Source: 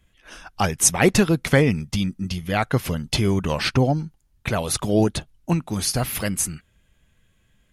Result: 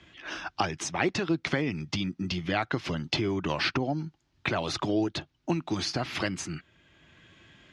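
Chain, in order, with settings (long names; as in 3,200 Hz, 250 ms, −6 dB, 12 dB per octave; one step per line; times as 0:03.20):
downward compressor 4 to 1, threshold −24 dBFS, peak gain reduction 11.5 dB
loudspeaker in its box 130–5,400 Hz, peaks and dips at 130 Hz −4 dB, 210 Hz −8 dB, 330 Hz +6 dB, 480 Hz −7 dB
multiband upward and downward compressor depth 40%
level +1 dB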